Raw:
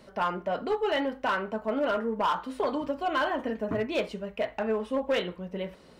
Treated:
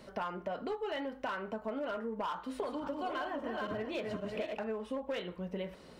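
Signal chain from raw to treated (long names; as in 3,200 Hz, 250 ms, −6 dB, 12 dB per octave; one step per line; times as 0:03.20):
0:02.35–0:04.64: feedback delay that plays each chunk backwards 265 ms, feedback 42%, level −3.5 dB
downward compressor 6 to 1, threshold −35 dBFS, peak gain reduction 12.5 dB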